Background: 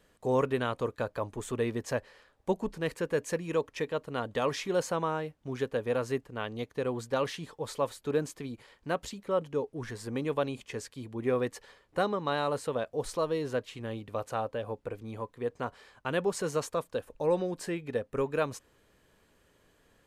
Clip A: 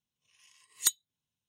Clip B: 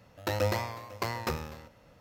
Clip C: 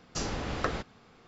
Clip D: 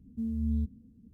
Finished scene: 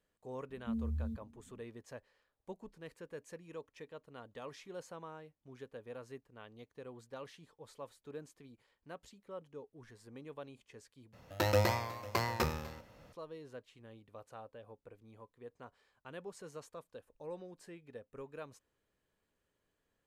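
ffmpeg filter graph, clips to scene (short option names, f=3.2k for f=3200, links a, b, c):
-filter_complex "[0:a]volume=-17.5dB[a];[4:a]asplit=2[b][c];[c]adelay=7.5,afreqshift=1.8[d];[b][d]amix=inputs=2:normalize=1[e];[a]asplit=2[f][g];[f]atrim=end=11.134[h];[2:a]atrim=end=2,asetpts=PTS-STARTPTS,volume=-0.5dB[i];[g]atrim=start=13.126[j];[e]atrim=end=1.13,asetpts=PTS-STARTPTS,volume=-3dB,afade=t=in:d=0.004:c=hsin,afade=t=out:st=1.126:d=0.004:c=hsin,adelay=490[k];[h][i]acrossfade=d=0.004:c1=hsin:c2=hsin[l];[l][j]acrossfade=d=0.004:c1=hsin:c2=hsin[m];[m][k]amix=inputs=2:normalize=0"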